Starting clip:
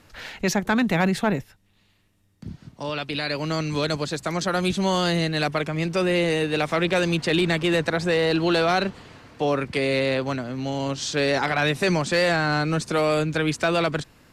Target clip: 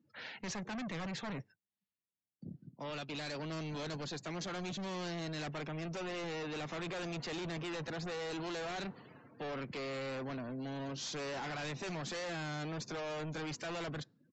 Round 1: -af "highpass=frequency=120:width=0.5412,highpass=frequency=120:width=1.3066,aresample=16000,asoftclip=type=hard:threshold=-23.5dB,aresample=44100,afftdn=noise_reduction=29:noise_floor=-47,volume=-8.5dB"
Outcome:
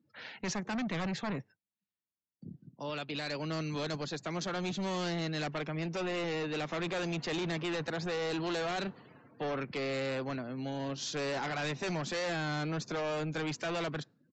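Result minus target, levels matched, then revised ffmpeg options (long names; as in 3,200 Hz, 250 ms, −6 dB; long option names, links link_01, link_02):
hard clipping: distortion −4 dB
-af "highpass=frequency=120:width=0.5412,highpass=frequency=120:width=1.3066,aresample=16000,asoftclip=type=hard:threshold=-30.5dB,aresample=44100,afftdn=noise_reduction=29:noise_floor=-47,volume=-8.5dB"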